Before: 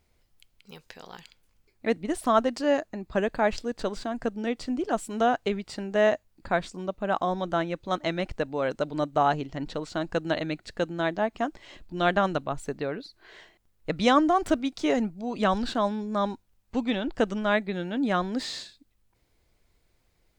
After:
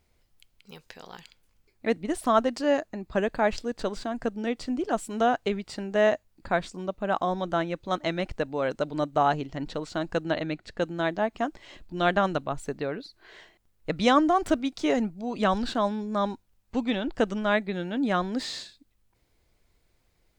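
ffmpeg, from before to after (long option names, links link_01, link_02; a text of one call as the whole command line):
ffmpeg -i in.wav -filter_complex "[0:a]asettb=1/sr,asplit=3[link_01][link_02][link_03];[link_01]atrim=end=10.244[link_04];[link_02]atrim=start=10.24:end=10.82,asetpts=PTS-STARTPTS,afade=type=in:duration=0.004:curve=qsin,afade=type=out:start_time=0.576:duration=0.004:curve=qsin,highshelf=frequency=6100:gain=-9[link_05];[link_03]atrim=start=10.816[link_06];[link_04][link_05]acrossfade=duration=0.004:curve1=hsin:curve2=qsin[link_07];[link_07][link_06]acrossfade=duration=0.004:curve1=qsin:curve2=hsin" out.wav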